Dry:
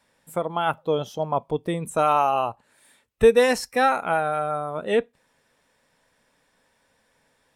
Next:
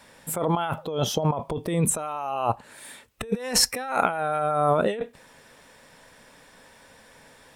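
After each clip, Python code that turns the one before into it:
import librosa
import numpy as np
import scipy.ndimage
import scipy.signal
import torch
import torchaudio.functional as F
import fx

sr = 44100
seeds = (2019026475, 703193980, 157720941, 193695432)

y = fx.over_compress(x, sr, threshold_db=-32.0, ratio=-1.0)
y = F.gain(torch.from_numpy(y), 5.5).numpy()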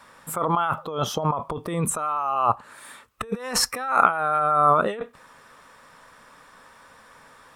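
y = fx.peak_eq(x, sr, hz=1200.0, db=14.5, octaves=0.59)
y = F.gain(torch.from_numpy(y), -2.5).numpy()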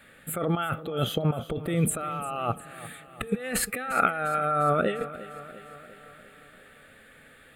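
y = fx.fixed_phaser(x, sr, hz=2400.0, stages=4)
y = fx.echo_feedback(y, sr, ms=350, feedback_pct=59, wet_db=-16.0)
y = F.gain(torch.from_numpy(y), 2.0).numpy()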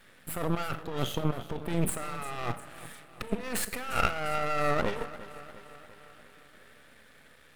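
y = fx.rev_schroeder(x, sr, rt60_s=0.64, comb_ms=29, drr_db=13.0)
y = np.maximum(y, 0.0)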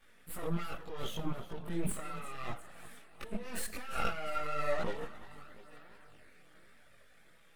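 y = fx.spec_quant(x, sr, step_db=15)
y = fx.chorus_voices(y, sr, voices=4, hz=0.63, base_ms=20, depth_ms=3.2, mix_pct=60)
y = F.gain(torch.from_numpy(y), -4.0).numpy()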